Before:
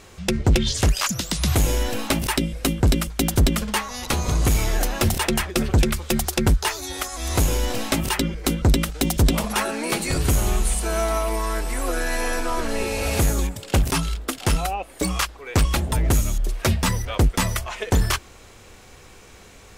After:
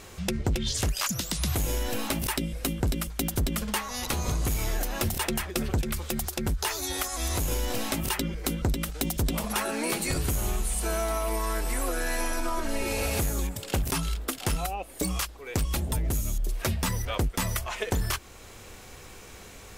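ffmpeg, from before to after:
ffmpeg -i in.wav -filter_complex "[0:a]asettb=1/sr,asplit=3[link_01][link_02][link_03];[link_01]atrim=end=5.814[link_04];[link_02]atrim=start=5.81:end=7.52,asetpts=PTS-STARTPTS,afade=type=in:duration=0.004:curve=qsin,afade=type=out:start_time=1.706:duration=0.004:curve=qsin,acompressor=threshold=-20dB:ratio=6:attack=3.2:release=140:knee=1:detection=peak[link_05];[link_03]atrim=start=7.516[link_06];[link_04][link_05]acrossfade=duration=0.004:curve1=hsin:curve2=qsin[link_07];[link_07][link_06]acrossfade=duration=0.004:curve1=qsin:curve2=hsin,asettb=1/sr,asplit=3[link_08][link_09][link_10];[link_08]atrim=end=12.204[link_11];[link_09]atrim=start=12.2:end=12.93,asetpts=PTS-STARTPTS,afade=type=in:duration=0.004:curve=qsin,afade=type=out:start_time=0.726:duration=0.004:curve=qsin,aecho=1:1:3.2:0.63,atrim=end_sample=32193[link_12];[link_10]atrim=start=12.926[link_13];[link_11][link_12]acrossfade=duration=0.004:curve1=hsin:curve2=qsin[link_14];[link_14][link_13]acrossfade=duration=0.004:curve1=qsin:curve2=hsin,asettb=1/sr,asplit=3[link_15][link_16][link_17];[link_15]atrim=end=14.664[link_18];[link_16]atrim=start=14.66:end=16.61,asetpts=PTS-STARTPTS,afade=type=in:duration=0.004:curve=qsin,afade=type=out:start_time=1.946:duration=0.004:curve=qsin,equalizer=frequency=1400:width=0.54:gain=-4.5[link_19];[link_17]atrim=start=16.606[link_20];[link_18][link_19]acrossfade=duration=0.004:curve1=hsin:curve2=qsin[link_21];[link_21][link_20]acrossfade=duration=0.004:curve1=qsin:curve2=hsin,equalizer=frequency=14000:width_type=o:width=0.77:gain=6.5,alimiter=limit=-15.5dB:level=0:latency=1:release=440,acompressor=threshold=-24dB:ratio=6" out.wav

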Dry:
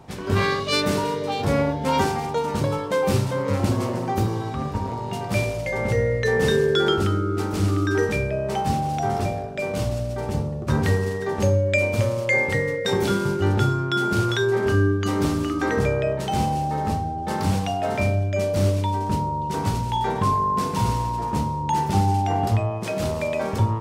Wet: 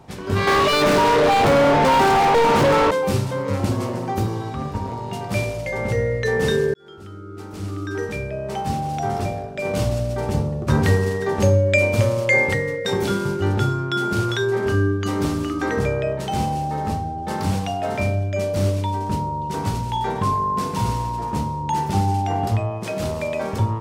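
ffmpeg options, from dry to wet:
ffmpeg -i in.wav -filter_complex "[0:a]asettb=1/sr,asplit=3[link_01][link_02][link_03];[link_01]atrim=end=0.474[link_04];[link_02]atrim=start=0.47:end=2.91,asetpts=PTS-STARTPTS,afade=type=in:duration=0.004:curve=qsin,afade=type=out:start_time=2.436:duration=0.004:curve=qsin,asplit=2[link_05][link_06];[link_06]highpass=frequency=720:poles=1,volume=39dB,asoftclip=type=tanh:threshold=-8dB[link_07];[link_05][link_07]amix=inputs=2:normalize=0,lowpass=frequency=1500:poles=1,volume=-6dB[link_08];[link_03]atrim=start=2.906[link_09];[link_04][link_08]acrossfade=duration=0.004:curve1=hsin:curve2=qsin[link_10];[link_10][link_09]acrossfade=duration=0.004:curve1=qsin:curve2=hsin,asplit=4[link_11][link_12][link_13][link_14];[link_11]atrim=end=6.74,asetpts=PTS-STARTPTS,afade=type=out:start_time=6.736:duration=0.004:curve=hsin[link_15];[link_12]atrim=start=6.74:end=9.652,asetpts=PTS-STARTPTS,afade=type=in:duration=2.29[link_16];[link_13]atrim=start=9.648:end=12.542,asetpts=PTS-STARTPTS,volume=3.5dB[link_17];[link_14]atrim=start=12.538[link_18];[link_15][link_16]concat=n=2:v=0:a=1[link_19];[link_19][link_17]acrossfade=duration=0.004:curve1=hsin:curve2=hsin[link_20];[link_20][link_18]acrossfade=duration=0.004:curve1=hsin:curve2=hsin" out.wav

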